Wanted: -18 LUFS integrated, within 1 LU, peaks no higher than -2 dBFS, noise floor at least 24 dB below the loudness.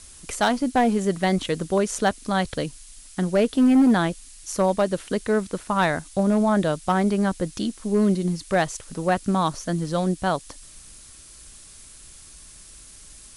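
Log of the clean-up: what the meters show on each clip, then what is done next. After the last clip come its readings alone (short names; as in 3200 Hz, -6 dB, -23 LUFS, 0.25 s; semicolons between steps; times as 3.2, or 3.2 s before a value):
clipped 0.6%; flat tops at -12.5 dBFS; noise floor -46 dBFS; noise floor target -47 dBFS; loudness -23.0 LUFS; peak -12.5 dBFS; loudness target -18.0 LUFS
-> clip repair -12.5 dBFS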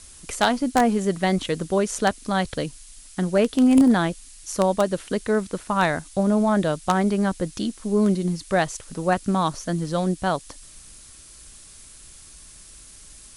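clipped 0.0%; noise floor -46 dBFS; noise floor target -47 dBFS
-> noise print and reduce 6 dB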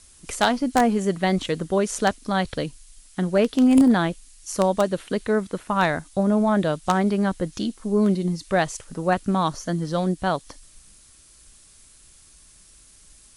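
noise floor -52 dBFS; loudness -22.5 LUFS; peak -3.5 dBFS; loudness target -18.0 LUFS
-> gain +4.5 dB; limiter -2 dBFS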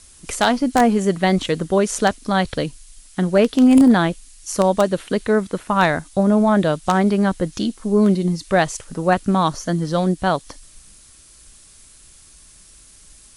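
loudness -18.5 LUFS; peak -2.0 dBFS; noise floor -48 dBFS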